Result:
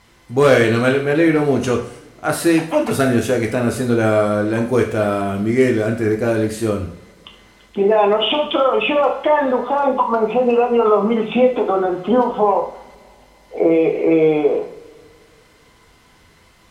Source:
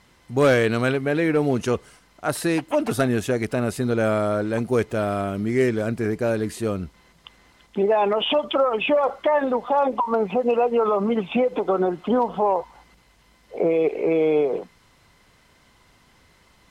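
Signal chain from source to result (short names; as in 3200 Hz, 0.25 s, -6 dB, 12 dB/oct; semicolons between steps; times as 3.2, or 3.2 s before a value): two-slope reverb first 0.52 s, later 3.1 s, from -27 dB, DRR 1 dB; gain +3 dB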